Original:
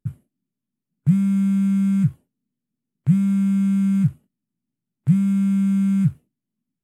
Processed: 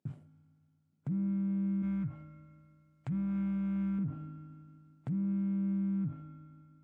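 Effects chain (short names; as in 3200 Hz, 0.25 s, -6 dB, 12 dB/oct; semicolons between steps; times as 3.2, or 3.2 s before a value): AM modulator 130 Hz, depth 25%; treble ducked by the level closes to 1200 Hz, closed at -16.5 dBFS; 1.82–3.99 bell 280 Hz -12 dB 2.1 oct; reverb RT60 2.4 s, pre-delay 4 ms, DRR 15 dB; vocal rider 0.5 s; bell 710 Hz +8.5 dB 1 oct; limiter -30 dBFS, peak gain reduction 22 dB; Chebyshev band-pass 150–6600 Hz, order 2; gain +2.5 dB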